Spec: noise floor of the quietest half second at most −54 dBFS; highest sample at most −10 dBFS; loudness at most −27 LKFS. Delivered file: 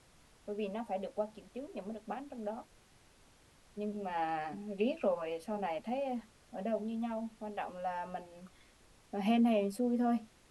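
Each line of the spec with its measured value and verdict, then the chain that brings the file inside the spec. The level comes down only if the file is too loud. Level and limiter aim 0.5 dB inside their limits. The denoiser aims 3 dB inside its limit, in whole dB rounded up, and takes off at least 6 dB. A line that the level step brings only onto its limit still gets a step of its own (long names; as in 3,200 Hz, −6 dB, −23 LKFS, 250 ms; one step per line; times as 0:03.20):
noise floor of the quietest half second −64 dBFS: in spec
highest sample −20.0 dBFS: in spec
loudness −37.0 LKFS: in spec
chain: no processing needed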